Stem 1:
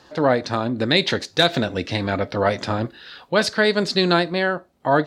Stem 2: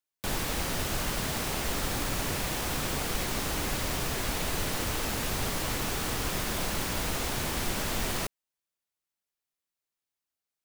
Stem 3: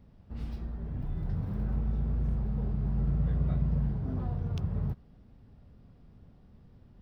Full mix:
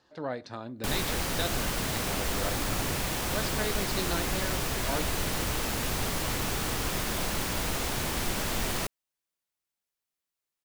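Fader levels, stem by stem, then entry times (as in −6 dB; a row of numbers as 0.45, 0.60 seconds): −16.5, +0.5, −14.0 decibels; 0.00, 0.60, 1.75 seconds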